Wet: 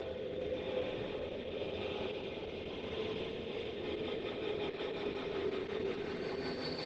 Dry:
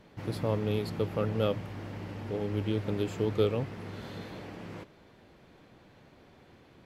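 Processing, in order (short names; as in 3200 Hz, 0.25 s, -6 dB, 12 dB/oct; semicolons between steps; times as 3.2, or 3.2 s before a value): three-band isolator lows -17 dB, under 280 Hz, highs -17 dB, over 5600 Hz; reverse; compressor 16:1, threshold -40 dBFS, peak gain reduction 18 dB; reverse; Paulstretch 39×, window 0.05 s, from 0.68; rotary speaker horn 0.9 Hz, later 5.5 Hz, at 3.15; metallic resonator 76 Hz, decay 0.22 s, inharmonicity 0.03; on a send: frequency-shifting echo 0.411 s, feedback 60%, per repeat +40 Hz, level -9 dB; on the sum: gain +15.5 dB; Opus 10 kbps 48000 Hz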